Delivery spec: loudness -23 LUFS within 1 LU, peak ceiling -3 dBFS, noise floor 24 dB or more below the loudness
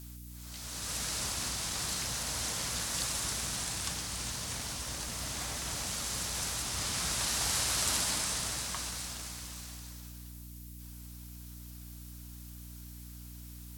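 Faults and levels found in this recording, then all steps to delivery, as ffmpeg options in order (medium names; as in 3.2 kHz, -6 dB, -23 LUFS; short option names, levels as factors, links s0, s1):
hum 60 Hz; highest harmonic 300 Hz; hum level -45 dBFS; noise floor -47 dBFS; noise floor target -57 dBFS; loudness -33.0 LUFS; peak level -15.5 dBFS; loudness target -23.0 LUFS
-> -af "bandreject=f=60:t=h:w=4,bandreject=f=120:t=h:w=4,bandreject=f=180:t=h:w=4,bandreject=f=240:t=h:w=4,bandreject=f=300:t=h:w=4"
-af "afftdn=nr=10:nf=-47"
-af "volume=3.16"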